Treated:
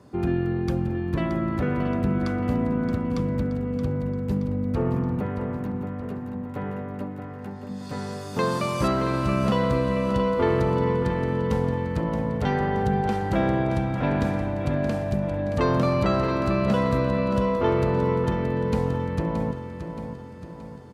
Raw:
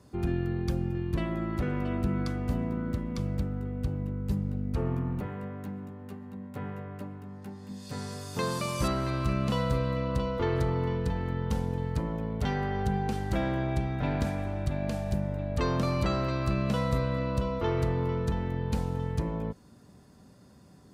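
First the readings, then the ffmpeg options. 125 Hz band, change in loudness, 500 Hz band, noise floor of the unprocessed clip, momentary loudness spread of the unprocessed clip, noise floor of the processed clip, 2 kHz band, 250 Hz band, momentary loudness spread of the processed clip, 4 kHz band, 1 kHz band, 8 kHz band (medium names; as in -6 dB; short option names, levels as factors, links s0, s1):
+3.5 dB, +6.0 dB, +8.5 dB, -55 dBFS, 11 LU, -37 dBFS, +6.0 dB, +7.0 dB, 11 LU, +2.5 dB, +7.5 dB, -0.5 dB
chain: -af "highpass=f=160:p=1,highshelf=f=3300:g=-11,aecho=1:1:624|1248|1872|2496|3120|3744:0.355|0.177|0.0887|0.0444|0.0222|0.0111,volume=2.51"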